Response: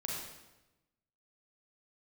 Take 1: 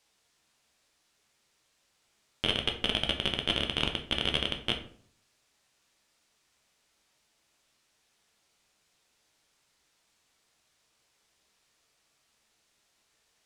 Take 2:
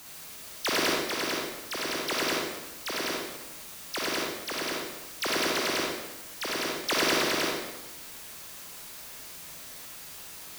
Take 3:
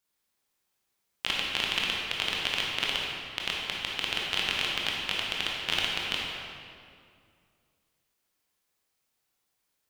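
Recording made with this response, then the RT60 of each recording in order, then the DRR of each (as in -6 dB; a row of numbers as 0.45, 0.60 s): 2; 0.55, 1.0, 2.3 s; 3.0, -3.0, -3.5 dB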